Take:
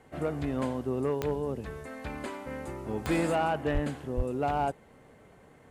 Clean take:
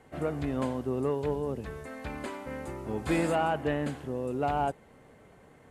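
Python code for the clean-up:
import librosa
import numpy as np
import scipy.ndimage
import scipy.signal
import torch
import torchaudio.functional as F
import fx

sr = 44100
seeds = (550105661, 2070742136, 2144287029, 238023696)

y = fx.fix_declip(x, sr, threshold_db=-20.5)
y = fx.fix_declick_ar(y, sr, threshold=10.0)
y = fx.fix_deplosive(y, sr, at_s=(3.73, 4.16))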